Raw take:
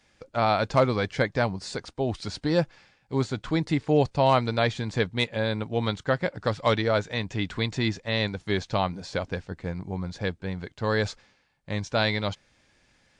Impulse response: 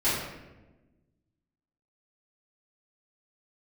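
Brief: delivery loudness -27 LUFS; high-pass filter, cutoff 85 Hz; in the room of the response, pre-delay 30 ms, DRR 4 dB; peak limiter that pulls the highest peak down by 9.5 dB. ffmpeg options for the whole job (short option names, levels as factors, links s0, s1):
-filter_complex "[0:a]highpass=85,alimiter=limit=0.119:level=0:latency=1,asplit=2[s0][s1];[1:a]atrim=start_sample=2205,adelay=30[s2];[s1][s2]afir=irnorm=-1:irlink=0,volume=0.15[s3];[s0][s3]amix=inputs=2:normalize=0,volume=1.33"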